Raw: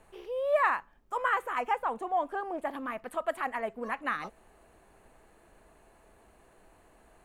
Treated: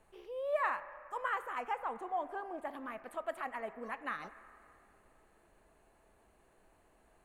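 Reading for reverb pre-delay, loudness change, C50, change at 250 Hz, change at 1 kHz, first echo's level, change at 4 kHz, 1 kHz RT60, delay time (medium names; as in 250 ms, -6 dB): 4 ms, -7.5 dB, 13.5 dB, -7.5 dB, -7.0 dB, no echo, -7.5 dB, 2.5 s, no echo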